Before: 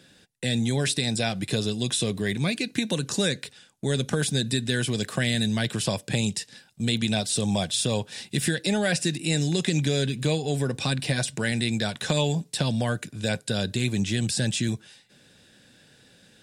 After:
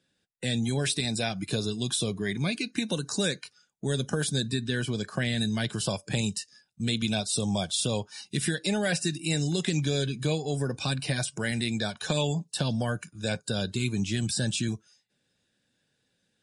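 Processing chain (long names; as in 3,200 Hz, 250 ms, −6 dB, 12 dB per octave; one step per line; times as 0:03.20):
noise reduction from a noise print of the clip's start 16 dB
0:04.47–0:05.38: high-shelf EQ 6,500 Hz −11 dB
level −2.5 dB
MP3 48 kbit/s 44,100 Hz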